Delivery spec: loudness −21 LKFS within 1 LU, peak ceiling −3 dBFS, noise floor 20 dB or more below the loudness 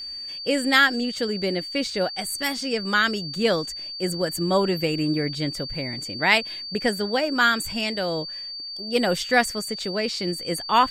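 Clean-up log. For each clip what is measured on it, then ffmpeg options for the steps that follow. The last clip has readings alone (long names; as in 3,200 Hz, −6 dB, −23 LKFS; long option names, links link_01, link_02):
interfering tone 4,600 Hz; level of the tone −32 dBFS; integrated loudness −23.5 LKFS; sample peak −2.5 dBFS; target loudness −21.0 LKFS
→ -af "bandreject=frequency=4600:width=30"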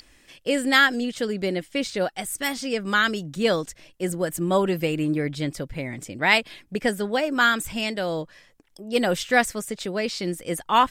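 interfering tone none found; integrated loudness −24.0 LKFS; sample peak −3.0 dBFS; target loudness −21.0 LKFS
→ -af "volume=3dB,alimiter=limit=-3dB:level=0:latency=1"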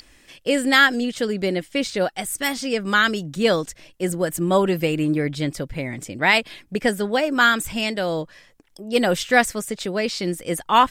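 integrated loudness −21.5 LKFS; sample peak −3.0 dBFS; background noise floor −54 dBFS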